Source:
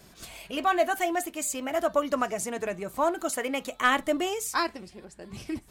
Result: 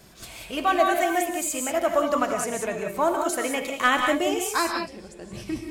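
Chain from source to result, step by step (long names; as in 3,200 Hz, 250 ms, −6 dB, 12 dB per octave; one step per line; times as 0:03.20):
reverb whose tail is shaped and stops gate 210 ms rising, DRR 3 dB
level +2 dB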